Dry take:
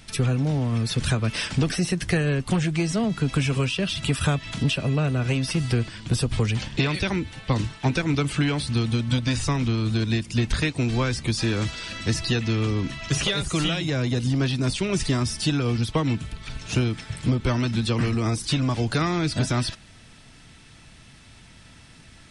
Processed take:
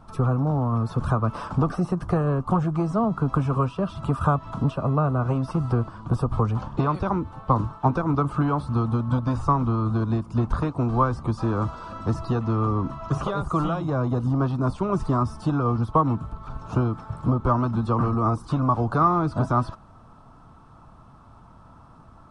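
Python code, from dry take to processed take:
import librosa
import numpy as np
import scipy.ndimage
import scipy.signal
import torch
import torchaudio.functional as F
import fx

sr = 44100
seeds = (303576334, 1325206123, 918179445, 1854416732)

y = fx.curve_eq(x, sr, hz=(440.0, 1200.0, 1900.0), db=(0, 12, -20))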